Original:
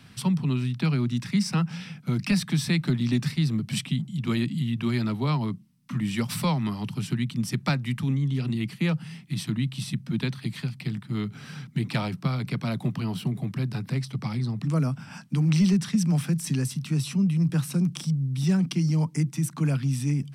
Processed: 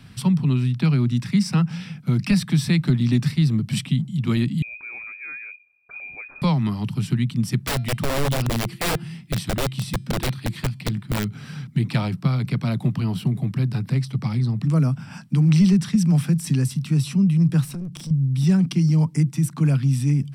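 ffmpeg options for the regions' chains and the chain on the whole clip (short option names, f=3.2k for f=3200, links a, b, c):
-filter_complex "[0:a]asettb=1/sr,asplit=3[a][b][c];[a]atrim=end=4.624[d];[b]atrim=start=4.62:end=6.42,asetpts=PTS-STARTPTS,afade=t=in:d=0.004:c=qsin,afade=t=out:st=1.796:d=0.004:c=qsin,acompressor=threshold=-56dB:ratio=1.5:attack=3.2:release=140:knee=1:detection=peak,lowpass=f=2.2k:t=q:w=0.5098,lowpass=f=2.2k:t=q:w=0.6013,lowpass=f=2.2k:t=q:w=0.9,lowpass=f=2.2k:t=q:w=2.563,afreqshift=-2600[e];[c]atrim=start=6.416[f];[d][e]acrossfade=d=0.004:c1=hsin:c2=qsin[g];[g][f]acrossfade=d=0.004:c1=qsin:c2=hsin,asettb=1/sr,asplit=3[h][i][j];[h]atrim=end=7.604[k];[i]atrim=start=7.6:end=11.26,asetpts=PTS-STARTPTS,afade=t=in:d=0.004:c=qsin,afade=t=out:st=3.656:d=0.004:c=qsin,bandreject=f=342.9:t=h:w=4,bandreject=f=685.8:t=h:w=4,bandreject=f=1.0287k:t=h:w=4,bandreject=f=1.3716k:t=h:w=4,bandreject=f=1.7145k:t=h:w=4,bandreject=f=2.0574k:t=h:w=4,bandreject=f=2.4003k:t=h:w=4,bandreject=f=2.7432k:t=h:w=4,bandreject=f=3.0861k:t=h:w=4,bandreject=f=3.429k:t=h:w=4,bandreject=f=3.7719k:t=h:w=4,bandreject=f=4.1148k:t=h:w=4,bandreject=f=4.4577k:t=h:w=4,bandreject=f=4.8006k:t=h:w=4,bandreject=f=5.1435k:t=h:w=4,bandreject=f=5.4864k:t=h:w=4,bandreject=f=5.8293k:t=h:w=4,bandreject=f=6.1722k:t=h:w=4,bandreject=f=6.5151k:t=h:w=4,bandreject=f=6.858k:t=h:w=4,bandreject=f=7.2009k:t=h:w=4,bandreject=f=7.5438k:t=h:w=4,bandreject=f=7.8867k:t=h:w=4,bandreject=f=8.2296k:t=h:w=4,bandreject=f=8.5725k:t=h:w=4,bandreject=f=8.9154k:t=h:w=4,bandreject=f=9.2583k:t=h:w=4,bandreject=f=9.6012k:t=h:w=4,aeval=exprs='(mod(11.9*val(0)+1,2)-1)/11.9':c=same[l];[j]atrim=start=11.256[m];[k][l]acrossfade=d=0.004:c1=hsin:c2=qsin[n];[n][m]acrossfade=d=0.004:c1=qsin:c2=hsin,asettb=1/sr,asplit=3[o][p][q];[o]atrim=end=17.644[r];[p]atrim=start=17.64:end=18.11,asetpts=PTS-STARTPTS,afade=t=in:d=0.004:c=qsin,afade=t=out:st=0.466:d=0.004:c=qsin,acompressor=threshold=-34dB:ratio=4:attack=3.2:release=140:knee=1:detection=peak,aeval=exprs='clip(val(0),-1,0.0178)':c=same[s];[q]atrim=start=18.106[t];[r][s]acrossfade=d=0.004:c1=hsin:c2=qsin[u];[u][t]acrossfade=d=0.004:c1=qsin:c2=hsin,lowshelf=f=150:g=9,bandreject=f=6.4k:w=14,volume=1.5dB"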